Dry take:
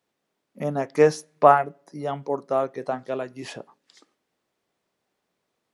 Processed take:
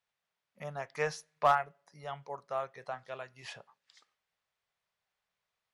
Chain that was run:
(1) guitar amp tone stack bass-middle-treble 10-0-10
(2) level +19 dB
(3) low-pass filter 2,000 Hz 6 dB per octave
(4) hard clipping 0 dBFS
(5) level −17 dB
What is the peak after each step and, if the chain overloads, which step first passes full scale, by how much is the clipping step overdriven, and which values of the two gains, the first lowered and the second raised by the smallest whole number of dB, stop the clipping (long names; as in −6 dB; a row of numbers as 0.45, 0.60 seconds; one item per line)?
−13.0, +6.0, +5.0, 0.0, −17.0 dBFS
step 2, 5.0 dB
step 2 +14 dB, step 5 −12 dB